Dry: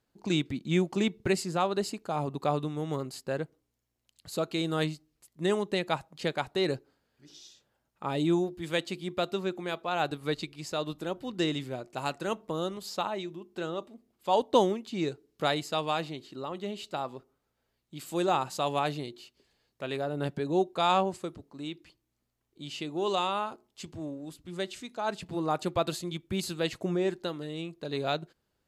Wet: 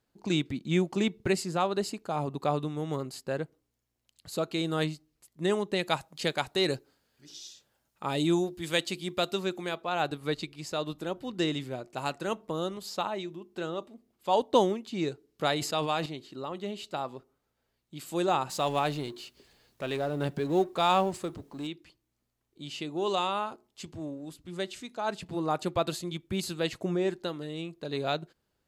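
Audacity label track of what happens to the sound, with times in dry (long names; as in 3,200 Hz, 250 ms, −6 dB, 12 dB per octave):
5.790000	9.690000	high-shelf EQ 3,000 Hz +8.5 dB
15.520000	16.060000	level that may fall only so fast at most 51 dB per second
18.490000	21.670000	mu-law and A-law mismatch coded by mu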